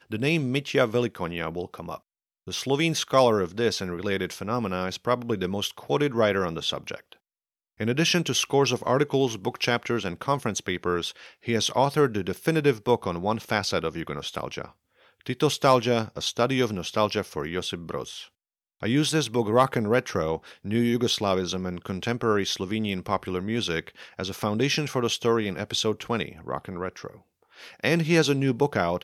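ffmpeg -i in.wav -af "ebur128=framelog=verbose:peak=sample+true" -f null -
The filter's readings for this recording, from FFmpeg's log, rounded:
Integrated loudness:
  I:         -25.8 LUFS
  Threshold: -36.2 LUFS
Loudness range:
  LRA:         2.5 LU
  Threshold: -46.4 LUFS
  LRA low:   -27.7 LUFS
  LRA high:  -25.2 LUFS
Sample peak:
  Peak:       -7.0 dBFS
True peak:
  Peak:       -6.9 dBFS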